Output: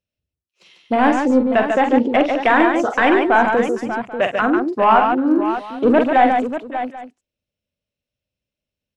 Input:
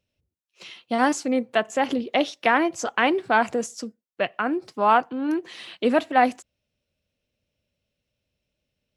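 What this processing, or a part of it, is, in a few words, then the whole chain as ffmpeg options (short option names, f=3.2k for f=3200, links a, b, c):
saturation between pre-emphasis and de-emphasis: -filter_complex "[0:a]highshelf=f=3.3k:g=7,asoftclip=type=tanh:threshold=-14.5dB,highshelf=f=3.3k:g=-7,afwtdn=0.0224,asettb=1/sr,asplit=3[a][b][c];[a]atrim=end=1.104[d];[b]atrim=start=1.1:end=2.29,asetpts=PTS-STARTPTS,afade=t=in:d=0.004:c=qsin,afade=t=out:st=1.186:d=0.004:c=qsin,lowpass=8.7k[e];[c]atrim=start=2.286[f];[d][e]acrossfade=d=0.004:c1=hsin:c2=qsin[g];[g][f]acrossfade=d=0.004:c1=qsin:c2=hsin,aecho=1:1:46|129|144|590|787:0.447|0.106|0.562|0.316|0.1,volume=8dB"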